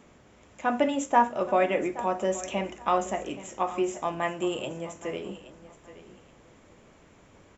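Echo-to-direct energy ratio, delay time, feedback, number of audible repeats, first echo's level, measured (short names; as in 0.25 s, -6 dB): -16.0 dB, 0.824 s, 23%, 2, -16.0 dB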